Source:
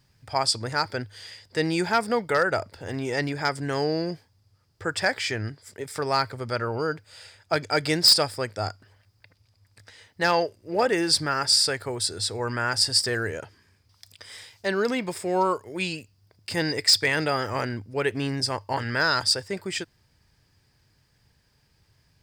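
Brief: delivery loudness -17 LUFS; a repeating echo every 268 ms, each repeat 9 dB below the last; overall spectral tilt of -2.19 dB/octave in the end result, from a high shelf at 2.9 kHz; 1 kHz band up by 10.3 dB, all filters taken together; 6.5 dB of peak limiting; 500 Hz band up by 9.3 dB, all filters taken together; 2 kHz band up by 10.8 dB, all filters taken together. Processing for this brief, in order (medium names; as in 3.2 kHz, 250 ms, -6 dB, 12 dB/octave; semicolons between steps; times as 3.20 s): peaking EQ 500 Hz +8.5 dB; peaking EQ 1 kHz +7.5 dB; peaking EQ 2 kHz +7.5 dB; treble shelf 2.9 kHz +8.5 dB; peak limiter -5.5 dBFS; feedback delay 268 ms, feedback 35%, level -9 dB; trim +1 dB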